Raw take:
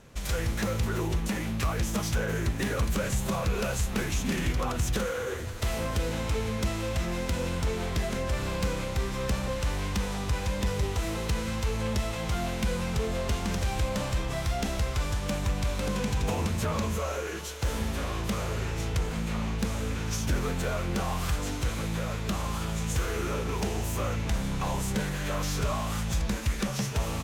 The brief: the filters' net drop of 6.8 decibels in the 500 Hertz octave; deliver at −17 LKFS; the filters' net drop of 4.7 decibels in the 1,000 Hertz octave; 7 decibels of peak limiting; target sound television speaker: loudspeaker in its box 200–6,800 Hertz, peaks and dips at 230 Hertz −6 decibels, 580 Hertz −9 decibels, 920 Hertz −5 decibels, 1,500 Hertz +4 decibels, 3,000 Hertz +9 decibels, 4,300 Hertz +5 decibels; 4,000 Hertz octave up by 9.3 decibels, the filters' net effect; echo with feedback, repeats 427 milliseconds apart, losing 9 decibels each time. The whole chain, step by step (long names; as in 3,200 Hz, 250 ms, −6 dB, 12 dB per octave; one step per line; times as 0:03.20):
parametric band 500 Hz −3 dB
parametric band 1,000 Hz −4 dB
parametric band 4,000 Hz +4.5 dB
brickwall limiter −22.5 dBFS
loudspeaker in its box 200–6,800 Hz, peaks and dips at 230 Hz −6 dB, 580 Hz −9 dB, 920 Hz −5 dB, 1,500 Hz +4 dB, 3,000 Hz +9 dB, 4,300 Hz +5 dB
repeating echo 427 ms, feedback 35%, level −9 dB
level +15.5 dB